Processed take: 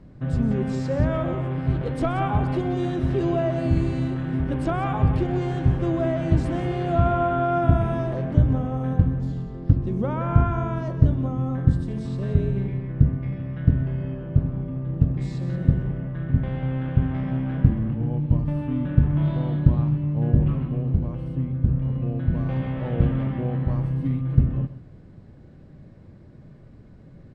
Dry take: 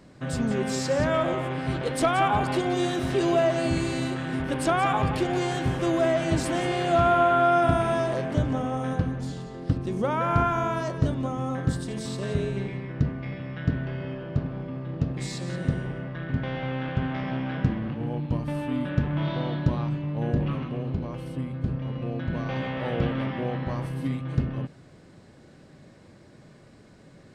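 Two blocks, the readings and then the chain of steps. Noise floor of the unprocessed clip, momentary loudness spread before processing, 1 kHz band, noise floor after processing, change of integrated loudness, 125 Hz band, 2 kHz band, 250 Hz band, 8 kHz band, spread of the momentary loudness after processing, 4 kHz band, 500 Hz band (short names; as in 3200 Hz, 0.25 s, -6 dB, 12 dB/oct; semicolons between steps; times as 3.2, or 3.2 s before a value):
-52 dBFS, 9 LU, -4.0 dB, -47 dBFS, +3.0 dB, +7.0 dB, -6.5 dB, +3.0 dB, under -15 dB, 6 LU, n/a, -2.0 dB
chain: RIAA curve playback; on a send: echo 0.127 s -15.5 dB; on the sum: gain -4.5 dB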